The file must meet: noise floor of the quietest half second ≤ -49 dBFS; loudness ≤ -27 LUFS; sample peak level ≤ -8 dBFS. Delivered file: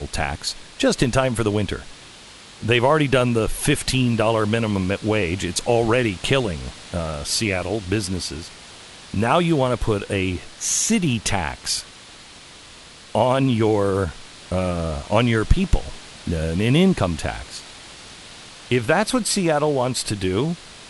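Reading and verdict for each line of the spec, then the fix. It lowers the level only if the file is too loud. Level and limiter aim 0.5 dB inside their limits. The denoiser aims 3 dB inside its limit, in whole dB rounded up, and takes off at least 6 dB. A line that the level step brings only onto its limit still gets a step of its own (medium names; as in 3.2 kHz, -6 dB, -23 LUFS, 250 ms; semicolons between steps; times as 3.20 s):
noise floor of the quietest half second -43 dBFS: fail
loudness -21.0 LUFS: fail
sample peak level -2.5 dBFS: fail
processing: trim -6.5 dB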